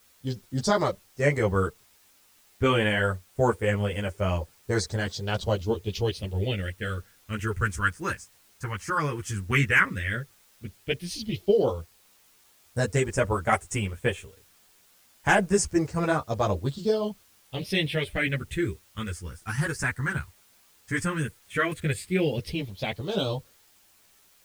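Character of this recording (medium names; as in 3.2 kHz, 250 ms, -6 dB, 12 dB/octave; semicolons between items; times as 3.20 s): phasing stages 4, 0.087 Hz, lowest notch 590–4500 Hz; a quantiser's noise floor 10-bit, dither triangular; a shimmering, thickened sound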